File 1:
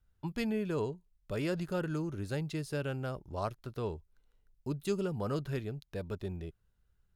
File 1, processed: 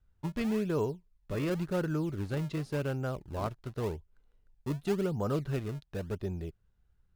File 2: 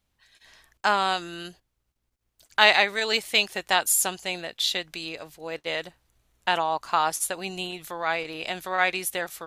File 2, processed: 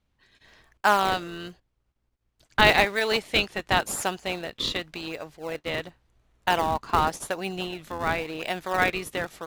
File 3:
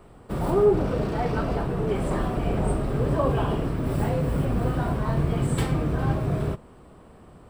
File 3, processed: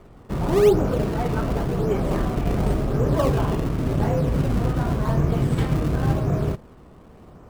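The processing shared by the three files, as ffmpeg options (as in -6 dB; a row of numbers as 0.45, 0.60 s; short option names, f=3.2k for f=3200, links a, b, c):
-filter_complex "[0:a]aemphasis=mode=reproduction:type=50fm,asplit=2[a][b];[b]acrusher=samples=32:mix=1:aa=0.000001:lfo=1:lforange=51.2:lforate=0.91,volume=-8dB[c];[a][c]amix=inputs=2:normalize=0"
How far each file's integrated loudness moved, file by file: +2.5, -1.0, +3.0 LU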